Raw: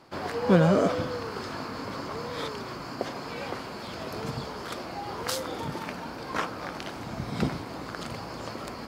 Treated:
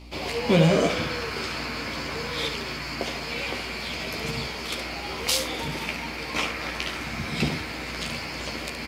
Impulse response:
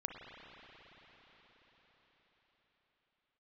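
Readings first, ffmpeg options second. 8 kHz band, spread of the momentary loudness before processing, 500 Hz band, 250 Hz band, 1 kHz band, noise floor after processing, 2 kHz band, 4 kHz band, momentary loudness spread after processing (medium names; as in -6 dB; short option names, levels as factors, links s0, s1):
+8.5 dB, 14 LU, +1.0 dB, +1.0 dB, 0.0 dB, -34 dBFS, +8.0 dB, +10.0 dB, 8 LU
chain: -filter_complex "[0:a]asplit=2[s0][s1];[s1]highpass=f=2300:t=q:w=3[s2];[1:a]atrim=start_sample=2205,asetrate=27783,aresample=44100[s3];[s2][s3]afir=irnorm=-1:irlink=0,volume=1.19[s4];[s0][s4]amix=inputs=2:normalize=0,aeval=exprs='val(0)+0.00631*(sin(2*PI*60*n/s)+sin(2*PI*2*60*n/s)/2+sin(2*PI*3*60*n/s)/3+sin(2*PI*4*60*n/s)/4+sin(2*PI*5*60*n/s)/5)':c=same,aecho=1:1:13|70:0.531|0.398"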